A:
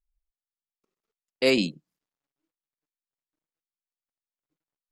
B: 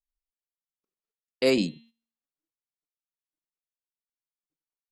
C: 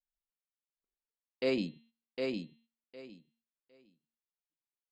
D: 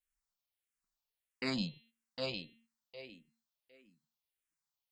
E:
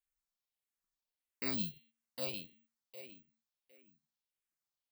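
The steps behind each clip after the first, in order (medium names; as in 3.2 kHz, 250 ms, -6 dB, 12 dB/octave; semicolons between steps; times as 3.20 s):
de-hum 230 Hz, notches 18; dynamic bell 2.8 kHz, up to -5 dB, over -35 dBFS, Q 0.9; gate -53 dBFS, range -12 dB
low-pass 4.2 kHz 12 dB/octave; on a send: feedback delay 758 ms, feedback 18%, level -4 dB; on the sum: trim -8.5 dB
peaking EQ 350 Hz -10 dB 1.4 oct; barber-pole phaser -1.6 Hz; trim +7 dB
careless resampling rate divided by 2×, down filtered, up zero stuff; trim -4 dB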